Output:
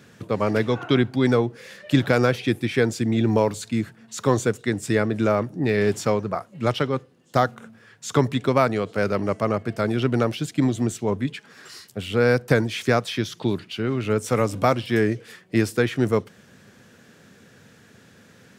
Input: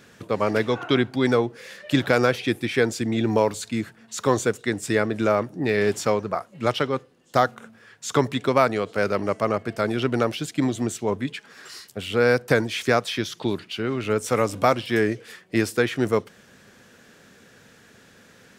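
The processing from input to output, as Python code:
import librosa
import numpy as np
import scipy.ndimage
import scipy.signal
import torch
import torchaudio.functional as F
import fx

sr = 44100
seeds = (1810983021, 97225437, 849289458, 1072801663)

y = scipy.signal.sosfilt(scipy.signal.butter(2, 79.0, 'highpass', fs=sr, output='sos'), x)
y = fx.peak_eq(y, sr, hz=100.0, db=7.5, octaves=2.6)
y = fx.quant_float(y, sr, bits=8, at=(2.27, 3.81))
y = y * librosa.db_to_amplitude(-1.5)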